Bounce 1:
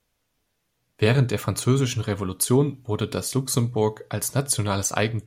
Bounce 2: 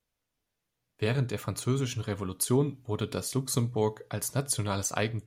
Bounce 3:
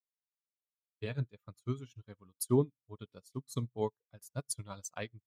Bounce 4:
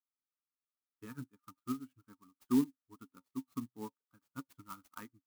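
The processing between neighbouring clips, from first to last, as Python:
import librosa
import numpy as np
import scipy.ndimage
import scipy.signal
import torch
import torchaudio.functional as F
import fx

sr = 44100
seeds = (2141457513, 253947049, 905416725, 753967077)

y1 = fx.rider(x, sr, range_db=10, speed_s=2.0)
y1 = y1 * librosa.db_to_amplitude(-7.0)
y2 = fx.bin_expand(y1, sr, power=1.5)
y2 = fx.upward_expand(y2, sr, threshold_db=-47.0, expansion=2.5)
y3 = fx.double_bandpass(y2, sr, hz=580.0, octaves=2.2)
y3 = fx.small_body(y3, sr, hz=(550.0, 910.0), ring_ms=95, db=12)
y3 = fx.clock_jitter(y3, sr, seeds[0], jitter_ms=0.053)
y3 = y3 * librosa.db_to_amplitude(6.5)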